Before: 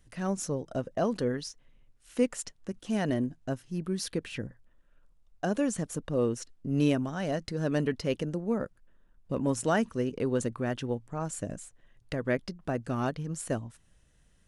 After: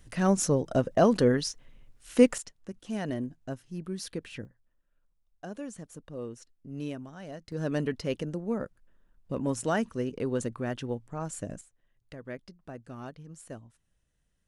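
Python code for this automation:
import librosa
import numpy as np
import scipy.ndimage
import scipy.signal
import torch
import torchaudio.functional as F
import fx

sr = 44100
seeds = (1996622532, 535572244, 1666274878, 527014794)

y = fx.gain(x, sr, db=fx.steps((0.0, 7.0), (2.38, -4.0), (4.45, -11.0), (7.52, -1.5), (11.61, -11.5)))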